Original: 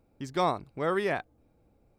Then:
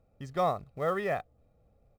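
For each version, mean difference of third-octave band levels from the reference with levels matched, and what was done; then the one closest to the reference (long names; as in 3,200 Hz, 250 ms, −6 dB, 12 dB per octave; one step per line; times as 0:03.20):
3.5 dB: high-shelf EQ 3,100 Hz −11 dB
comb filter 1.6 ms, depth 62%
in parallel at −10 dB: floating-point word with a short mantissa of 2 bits
on the sum: level −4.5 dB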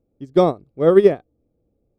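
9.5 dB: low shelf with overshoot 730 Hz +12.5 dB, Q 1.5
hollow resonant body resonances 1,200/3,300 Hz, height 9 dB, ringing for 25 ms
expander for the loud parts 2.5 to 1, over −25 dBFS
level +5 dB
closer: first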